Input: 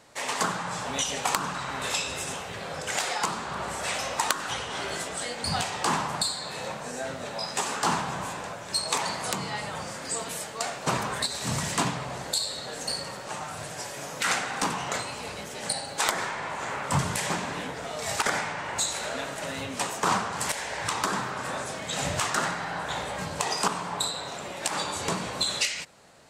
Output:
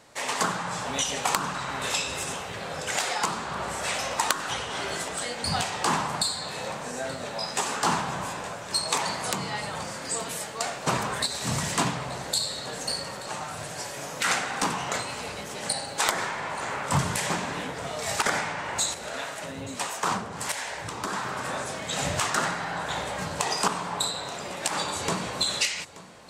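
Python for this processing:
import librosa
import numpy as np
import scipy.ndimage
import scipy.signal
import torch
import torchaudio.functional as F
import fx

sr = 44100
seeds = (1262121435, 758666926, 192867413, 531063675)

y = fx.harmonic_tremolo(x, sr, hz=1.5, depth_pct=70, crossover_hz=560.0, at=(18.94, 21.25))
y = y + 10.0 ** (-18.5 / 20.0) * np.pad(y, (int(879 * sr / 1000.0), 0))[:len(y)]
y = y * librosa.db_to_amplitude(1.0)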